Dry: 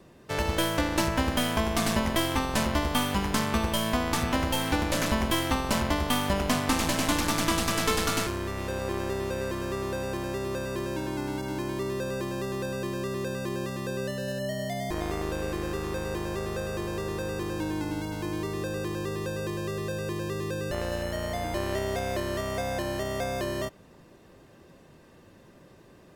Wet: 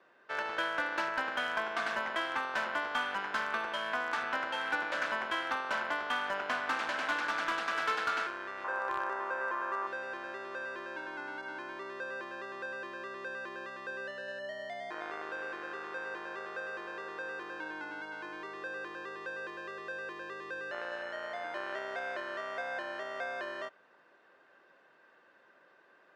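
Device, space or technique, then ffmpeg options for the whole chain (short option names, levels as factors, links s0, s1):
megaphone: -filter_complex "[0:a]asettb=1/sr,asplit=3[s0][s1][s2];[s0]atrim=end=8.644[s3];[s1]atrim=start=8.64:end=9.87,asetpts=PTS-STARTPTS,afade=t=in:d=0.004:c=qsin,afade=t=out:st=1.226:d=0.004:c=qsin,equalizer=f=125:t=o:w=1:g=-9,equalizer=f=1000:t=o:w=1:g=11,equalizer=f=4000:t=o:w=1:g=-7[s4];[s2]atrim=start=9.866[s5];[s3][s4]acrossfade=d=0.004:c1=hsin:c2=qsin[s6];[s6][s5]acrossfade=d=0.004:c1=qsin:c2=hsin,highpass=630,lowpass=2900,equalizer=f=1500:t=o:w=0.35:g=11,asoftclip=type=hard:threshold=0.112,volume=0.562"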